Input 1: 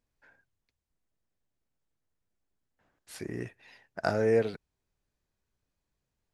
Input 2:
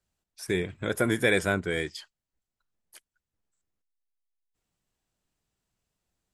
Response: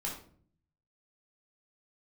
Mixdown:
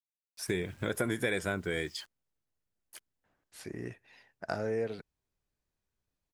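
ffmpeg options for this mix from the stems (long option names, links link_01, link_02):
-filter_complex "[0:a]adelay=450,volume=-3.5dB[link_01];[1:a]acrusher=bits=9:mix=0:aa=0.000001,volume=1dB[link_02];[link_01][link_02]amix=inputs=2:normalize=0,acompressor=threshold=-30dB:ratio=3"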